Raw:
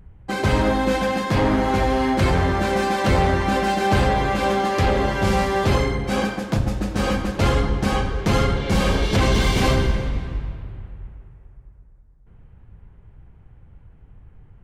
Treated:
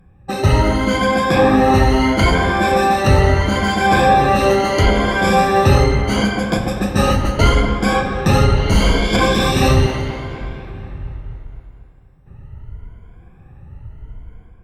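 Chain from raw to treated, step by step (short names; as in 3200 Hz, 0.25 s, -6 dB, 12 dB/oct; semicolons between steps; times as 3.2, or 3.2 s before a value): moving spectral ripple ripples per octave 1.8, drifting +0.75 Hz, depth 17 dB; 9.86–10.41 HPF 260 Hz; AGC gain up to 6 dB; dark delay 0.243 s, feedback 57%, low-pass 2400 Hz, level -11 dB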